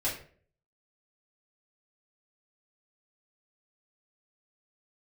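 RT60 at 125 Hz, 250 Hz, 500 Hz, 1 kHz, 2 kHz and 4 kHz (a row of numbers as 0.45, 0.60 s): 0.65, 0.55, 0.55, 0.40, 0.40, 0.30 s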